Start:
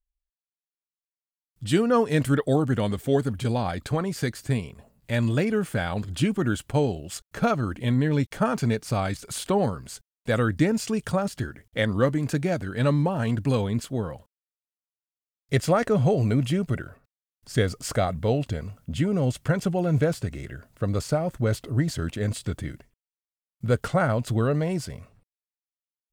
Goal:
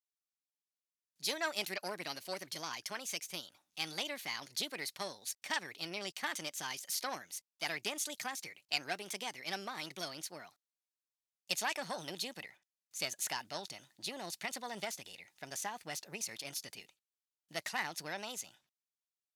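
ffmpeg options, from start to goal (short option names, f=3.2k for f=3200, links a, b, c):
-af "aeval=exprs='0.376*(cos(1*acos(clip(val(0)/0.376,-1,1)))-cos(1*PI/2))+0.0376*(cos(4*acos(clip(val(0)/0.376,-1,1)))-cos(4*PI/2))':c=same,bandpass=f=4.2k:t=q:w=0.95:csg=0,asetrate=59535,aresample=44100"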